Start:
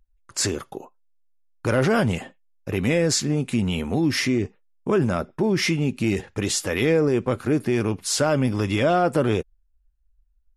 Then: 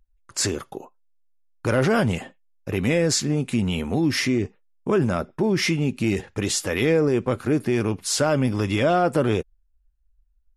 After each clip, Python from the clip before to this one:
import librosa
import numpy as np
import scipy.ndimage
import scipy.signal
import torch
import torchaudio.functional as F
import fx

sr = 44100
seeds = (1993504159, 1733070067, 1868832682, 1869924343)

y = x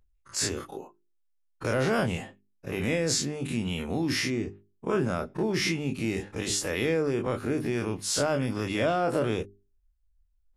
y = fx.spec_dilate(x, sr, span_ms=60)
y = fx.hum_notches(y, sr, base_hz=50, count=8)
y = y * 10.0 ** (-8.5 / 20.0)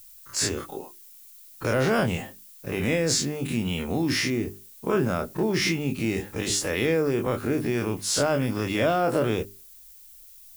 y = fx.dmg_noise_colour(x, sr, seeds[0], colour='violet', level_db=-52.0)
y = y * 10.0 ** (3.0 / 20.0)